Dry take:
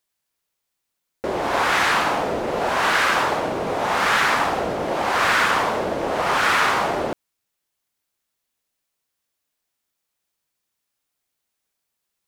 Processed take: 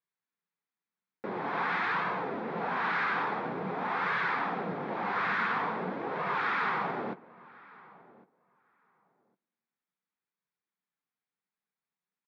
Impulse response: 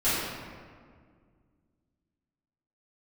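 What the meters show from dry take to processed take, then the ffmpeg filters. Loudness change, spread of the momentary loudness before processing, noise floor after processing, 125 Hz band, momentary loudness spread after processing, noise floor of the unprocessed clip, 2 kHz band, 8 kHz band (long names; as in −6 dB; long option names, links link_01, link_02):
−11.5 dB, 7 LU, below −85 dBFS, −8.5 dB, 6 LU, −79 dBFS, −11.0 dB, below −30 dB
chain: -filter_complex "[0:a]asoftclip=type=hard:threshold=-16.5dB,flanger=delay=1.8:depth=8.4:regen=-42:speed=0.48:shape=sinusoidal,highpass=frequency=140:width=0.5412,highpass=frequency=140:width=1.3066,equalizer=frequency=180:width_type=q:width=4:gain=7,equalizer=frequency=330:width_type=q:width=4:gain=-4,equalizer=frequency=600:width_type=q:width=4:gain=-10,equalizer=frequency=2900:width_type=q:width=4:gain=-10,lowpass=frequency=3200:width=0.5412,lowpass=frequency=3200:width=1.3066,asplit=2[link_01][link_02];[link_02]adelay=1106,lowpass=frequency=1900:poles=1,volume=-21.5dB,asplit=2[link_03][link_04];[link_04]adelay=1106,lowpass=frequency=1900:poles=1,volume=0.16[link_05];[link_01][link_03][link_05]amix=inputs=3:normalize=0,asplit=2[link_06][link_07];[1:a]atrim=start_sample=2205[link_08];[link_07][link_08]afir=irnorm=-1:irlink=0,volume=-35.5dB[link_09];[link_06][link_09]amix=inputs=2:normalize=0,volume=-4.5dB"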